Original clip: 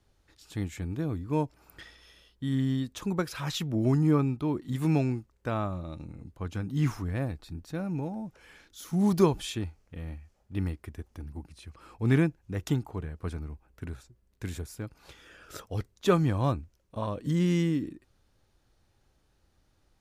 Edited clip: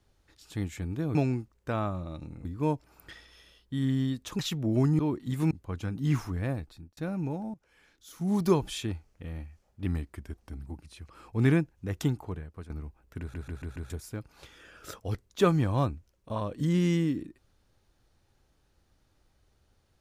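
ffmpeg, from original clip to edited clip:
-filter_complex "[0:a]asplit=16[s0][s1][s2][s3][s4][s5][s6][s7][s8][s9][s10][s11][s12][s13][s14][s15];[s0]atrim=end=1.152[s16];[s1]atrim=start=4.928:end=6.232[s17];[s2]atrim=start=1.148:end=3.092[s18];[s3]atrim=start=3.478:end=4.082[s19];[s4]atrim=start=4.408:end=4.932[s20];[s5]atrim=start=6.228:end=7.69,asetpts=PTS-STARTPTS,afade=t=out:st=0.902:d=0.56:c=qsin[s21];[s6]atrim=start=7.69:end=8.26,asetpts=PTS-STARTPTS,afade=t=in:d=0.004:c=hsin,afade=t=out:st=0.566:d=0.004:c=hsin:silence=0.188365[s22];[s7]atrim=start=8.26:end=10.584,asetpts=PTS-STARTPTS,afade=t=in:d=1.24:silence=0.188365[s23];[s8]atrim=start=10.58:end=11.36,asetpts=PTS-STARTPTS,asetrate=41013,aresample=44100,atrim=end_sample=36987,asetpts=PTS-STARTPTS[s24];[s9]atrim=start=11.356:end=13.36,asetpts=PTS-STARTPTS,afade=t=out:st=1.564:d=0.44:silence=0.211349[s25];[s10]atrim=start=13.36:end=14.002,asetpts=PTS-STARTPTS,afade=t=in:d=0.004:c=hsin:silence=0.211349[s26];[s11]atrim=start=13.858:end=14.002[s27];[s12]atrim=start=13.858:end=14.002[s28];[s13]atrim=start=13.858:end=14.002[s29];[s14]atrim=start=13.858:end=14.002[s30];[s15]atrim=start=14.558[s31];[s16][s17]acrossfade=d=0.004:c1=hsin:c2=hsin[s32];[s32][s18]acrossfade=d=0.004:c1=hsin:c2=hsin[s33];[s33][s19]acrossfade=d=0.004:c1=hsin:c2=hsin[s34];[s34][s20]acrossfade=d=0.004:c1=hsin:c2=hsin[s35];[s21][s22][s23]concat=n=3:v=0:a=1[s36];[s35][s36]acrossfade=d=0.004:c1=hsin:c2=hsin[s37];[s37][s24]acrossfade=d=0.004:c1=hsin:c2=hsin[s38];[s25][s26]concat=n=2:v=0:a=1[s39];[s38][s39]acrossfade=d=0.004:c1=hsin:c2=hsin[s40];[s40][s27]acrossfade=d=0.004:c1=hsin:c2=hsin[s41];[s41][s28]acrossfade=d=0.004:c1=hsin:c2=hsin[s42];[s42][s29]acrossfade=d=0.004:c1=hsin:c2=hsin[s43];[s43][s30]acrossfade=d=0.004:c1=hsin:c2=hsin[s44];[s44][s31]acrossfade=d=0.004:c1=hsin:c2=hsin"

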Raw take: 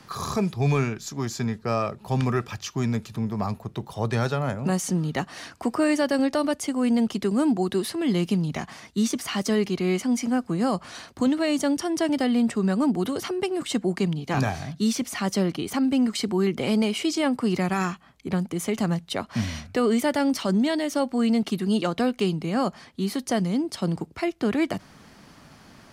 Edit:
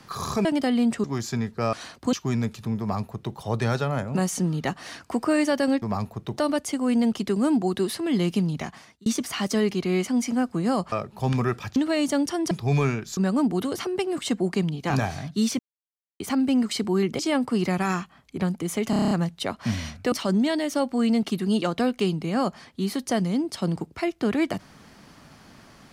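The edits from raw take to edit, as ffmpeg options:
-filter_complex "[0:a]asplit=23[s0][s1][s2][s3][s4][s5][s6][s7][s8][s9][s10][s11][s12][s13][s14][s15][s16][s17][s18][s19][s20][s21][s22];[s0]atrim=end=0.452[s23];[s1]atrim=start=12.018:end=12.612[s24];[s2]atrim=start=1.108:end=1.802[s25];[s3]atrim=start=10.868:end=11.272[s26];[s4]atrim=start=2.638:end=6.332[s27];[s5]atrim=start=3.308:end=3.872[s28];[s6]atrim=start=6.328:end=9.01,asetpts=PTS-STARTPTS,afade=t=out:st=2.002:d=0.68:c=qsin[s29];[s7]atrim=start=9.01:end=10.872,asetpts=PTS-STARTPTS,afade=t=in:d=0.004:c=hsin[s30];[s8]atrim=start=1.798:end=2.642[s31];[s9]atrim=start=11.268:end=12.022[s32];[s10]atrim=start=0.448:end=1.112[s33];[s11]atrim=start=12.608:end=15.03,asetpts=PTS-STARTPTS,afade=t=out:st=2.418:d=0.004:c=hsin[s34];[s12]atrim=start=15.03:end=15.64,asetpts=PTS-STARTPTS,volume=0[s35];[s13]atrim=start=15.64:end=16.632,asetpts=PTS-STARTPTS,afade=t=in:d=0.004:c=hsin[s36];[s14]atrim=start=17.098:end=18.842[s37];[s15]atrim=start=18.808:end=18.842[s38];[s16]atrim=start=18.808:end=18.842[s39];[s17]atrim=start=18.808:end=18.842[s40];[s18]atrim=start=18.808:end=18.842[s41];[s19]atrim=start=18.808:end=18.842[s42];[s20]atrim=start=18.808:end=18.842[s43];[s21]atrim=start=18.808:end=19.822[s44];[s22]atrim=start=20.318[s45];[s23][s24]acrossfade=d=0.004:c1=hsin:c2=hsin[s46];[s46][s25]acrossfade=d=0.004:c1=hsin:c2=hsin[s47];[s47][s26]acrossfade=d=0.004:c1=hsin:c2=hsin[s48];[s48][s27]acrossfade=d=0.004:c1=hsin:c2=hsin[s49];[s49][s28]acrossfade=d=0.004:c1=hsin:c2=hsin[s50];[s29][s30]concat=n=2:v=0:a=1[s51];[s50][s51]acrossfade=d=0.004:c1=hsin:c2=hsin[s52];[s52][s31]acrossfade=d=0.004:c1=hsin:c2=hsin[s53];[s53][s32]acrossfade=d=0.004:c1=hsin:c2=hsin[s54];[s54][s33]acrossfade=d=0.004:c1=hsin:c2=hsin[s55];[s34][s35][s36]concat=n=3:v=0:a=1[s56];[s55][s56]acrossfade=d=0.004:c1=hsin:c2=hsin[s57];[s57][s37]acrossfade=d=0.004:c1=hsin:c2=hsin[s58];[s58][s38]acrossfade=d=0.004:c1=hsin:c2=hsin[s59];[s59][s39]acrossfade=d=0.004:c1=hsin:c2=hsin[s60];[s60][s40]acrossfade=d=0.004:c1=hsin:c2=hsin[s61];[s61][s41]acrossfade=d=0.004:c1=hsin:c2=hsin[s62];[s62][s42]acrossfade=d=0.004:c1=hsin:c2=hsin[s63];[s63][s43]acrossfade=d=0.004:c1=hsin:c2=hsin[s64];[s64][s44]acrossfade=d=0.004:c1=hsin:c2=hsin[s65];[s65][s45]acrossfade=d=0.004:c1=hsin:c2=hsin"

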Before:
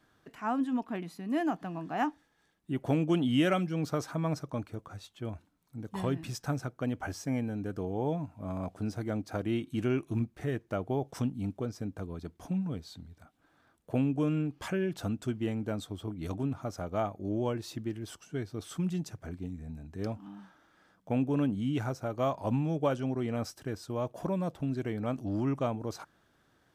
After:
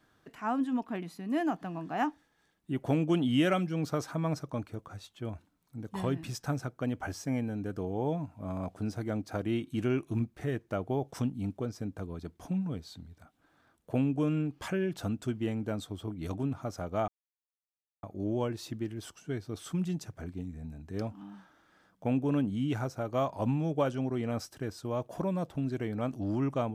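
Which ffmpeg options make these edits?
-filter_complex "[0:a]asplit=2[s0][s1];[s0]atrim=end=17.08,asetpts=PTS-STARTPTS,afade=t=out:st=17.076:d=0.004:c=hsin,apad=pad_dur=0.95[s2];[s1]atrim=start=17.08,asetpts=PTS-STARTPTS,afade=t=in:d=0.004:c=hsin[s3];[s2][s3]concat=n=2:v=0:a=1"

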